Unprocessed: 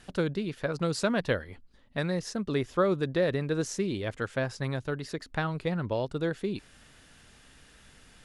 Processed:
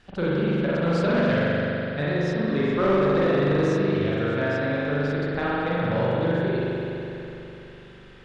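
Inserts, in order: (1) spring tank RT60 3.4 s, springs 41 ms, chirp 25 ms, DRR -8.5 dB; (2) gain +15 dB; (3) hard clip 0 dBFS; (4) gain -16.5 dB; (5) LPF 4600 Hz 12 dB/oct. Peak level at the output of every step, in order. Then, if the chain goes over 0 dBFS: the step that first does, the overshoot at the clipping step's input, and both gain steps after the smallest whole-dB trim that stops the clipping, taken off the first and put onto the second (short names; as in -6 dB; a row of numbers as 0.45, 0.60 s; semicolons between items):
-6.0, +9.0, 0.0, -16.5, -16.0 dBFS; step 2, 9.0 dB; step 2 +6 dB, step 4 -7.5 dB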